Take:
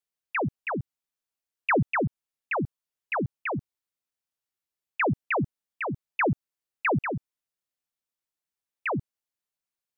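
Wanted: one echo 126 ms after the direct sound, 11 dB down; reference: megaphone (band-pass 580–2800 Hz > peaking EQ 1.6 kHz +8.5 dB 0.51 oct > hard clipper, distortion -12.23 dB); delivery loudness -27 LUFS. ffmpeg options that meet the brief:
-af "highpass=580,lowpass=2800,equalizer=f=1600:t=o:w=0.51:g=8.5,aecho=1:1:126:0.282,asoftclip=type=hard:threshold=0.106,volume=1.41"

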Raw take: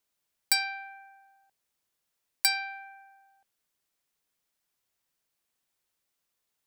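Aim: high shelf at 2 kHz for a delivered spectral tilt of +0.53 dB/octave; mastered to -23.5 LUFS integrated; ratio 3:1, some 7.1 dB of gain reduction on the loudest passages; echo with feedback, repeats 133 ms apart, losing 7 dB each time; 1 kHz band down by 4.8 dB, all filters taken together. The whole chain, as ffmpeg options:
-af "equalizer=f=1000:t=o:g=-5.5,highshelf=f=2000:g=-8.5,acompressor=threshold=0.0141:ratio=3,aecho=1:1:133|266|399|532|665:0.447|0.201|0.0905|0.0407|0.0183,volume=7.94"

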